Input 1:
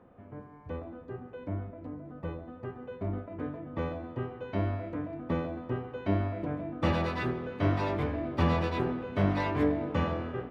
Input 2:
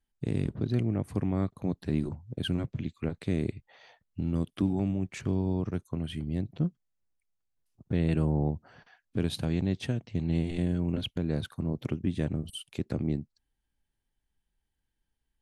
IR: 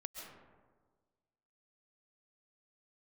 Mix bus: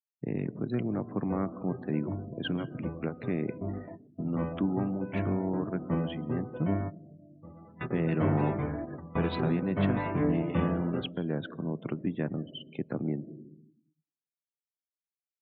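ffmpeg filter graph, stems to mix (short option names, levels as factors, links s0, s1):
-filter_complex "[0:a]equalizer=f=160:t=o:w=1:g=8,adelay=600,volume=0.708,asplit=2[s0][s1];[s1]volume=0.141[s2];[1:a]highpass=f=130:w=0.5412,highpass=f=130:w=1.3066,equalizer=f=1200:t=o:w=1.2:g=4.5,volume=0.841,asplit=3[s3][s4][s5];[s4]volume=0.501[s6];[s5]apad=whole_len=489742[s7];[s0][s7]sidechaingate=range=0.0224:threshold=0.00141:ratio=16:detection=peak[s8];[2:a]atrim=start_sample=2205[s9];[s2][s6]amix=inputs=2:normalize=0[s10];[s10][s9]afir=irnorm=-1:irlink=0[s11];[s8][s3][s11]amix=inputs=3:normalize=0,lowpass=3000,afftdn=nr=34:nf=-48,lowshelf=f=190:g=-4.5"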